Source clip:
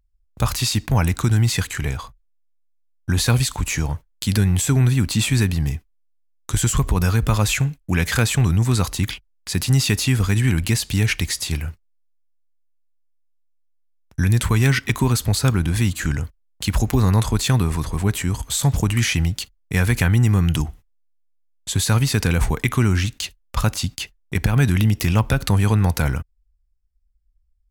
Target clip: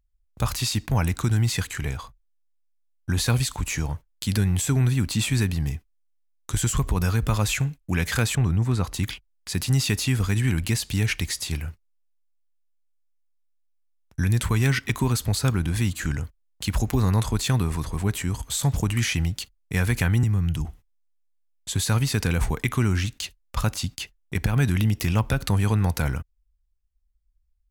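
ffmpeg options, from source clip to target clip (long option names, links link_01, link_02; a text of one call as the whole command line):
ffmpeg -i in.wav -filter_complex "[0:a]asettb=1/sr,asplit=3[link_01][link_02][link_03];[link_01]atrim=end=8.354[link_04];[link_02]atrim=start=8.35:end=8.94,asetpts=PTS-STARTPTS,afade=type=in:duration=0.004:curve=qsin,afade=type=out:start_time=0.586:duration=0.004:curve=qsin,highshelf=frequency=3200:gain=-11.5[link_05];[link_03]atrim=start=8.936[link_06];[link_04][link_05]acrossfade=duration=0.004:curve1=hsin:curve2=qsin[link_07];[link_07][link_06]acrossfade=duration=0.004:curve1=qsin:curve2=hsin,asettb=1/sr,asplit=3[link_08][link_09][link_10];[link_08]atrim=end=20.234[link_11];[link_09]atrim=start=20.23:end=20.65,asetpts=PTS-STARTPTS,afade=type=in:duration=0.004:curve=qsin,afade=type=out:start_time=0.416:duration=0.004:curve=qsin,acrossover=split=170[link_12][link_13];[link_13]acompressor=threshold=-30dB:ratio=5[link_14];[link_12][link_14]amix=inputs=2:normalize=0[link_15];[link_10]atrim=start=20.646[link_16];[link_11][link_15]acrossfade=duration=0.004:curve1=hsin:curve2=qsin[link_17];[link_17][link_16]acrossfade=duration=0.004:curve1=qsin:curve2=hsin,volume=-4.5dB" out.wav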